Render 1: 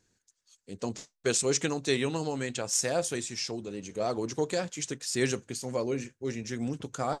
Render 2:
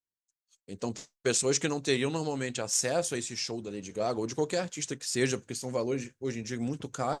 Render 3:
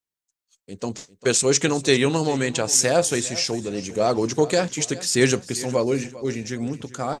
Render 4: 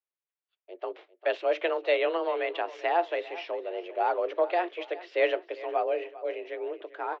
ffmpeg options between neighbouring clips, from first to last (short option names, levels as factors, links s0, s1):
-af "agate=range=0.0224:threshold=0.002:ratio=3:detection=peak"
-af "dynaudnorm=f=380:g=7:m=2,aecho=1:1:398|796|1194:0.133|0.0467|0.0163,volume=1.58"
-af "highpass=f=180:t=q:w=0.5412,highpass=f=180:t=q:w=1.307,lowpass=f=3000:t=q:w=0.5176,lowpass=f=3000:t=q:w=0.7071,lowpass=f=3000:t=q:w=1.932,afreqshift=170,volume=0.501"